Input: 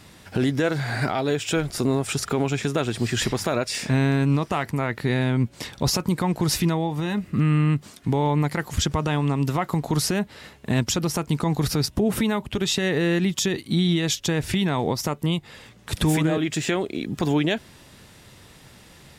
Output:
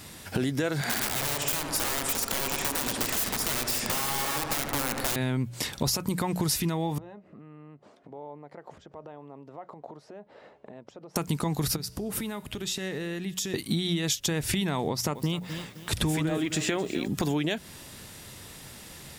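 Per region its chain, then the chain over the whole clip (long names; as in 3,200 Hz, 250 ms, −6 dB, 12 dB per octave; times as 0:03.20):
0:00.81–0:05.16: low shelf with overshoot 170 Hz −6 dB, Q 3 + wrap-around overflow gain 22 dB + feedback echo with a low-pass in the loop 74 ms, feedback 81%, level −5 dB
0:06.98–0:11.16: downward compressor 16 to 1, threshold −32 dBFS + resonant band-pass 590 Hz, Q 1.9 + high-frequency loss of the air 53 metres
0:11.76–0:13.54: downward compressor 2.5 to 1, threshold −32 dBFS + tuned comb filter 63 Hz, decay 1.2 s, mix 40%
0:14.89–0:17.08: high-shelf EQ 8,800 Hz −10 dB + feedback echo at a low word length 259 ms, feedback 35%, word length 8 bits, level −15 dB
whole clip: high-shelf EQ 7,100 Hz +11 dB; mains-hum notches 60/120/180 Hz; downward compressor, threshold −26 dBFS; level +1.5 dB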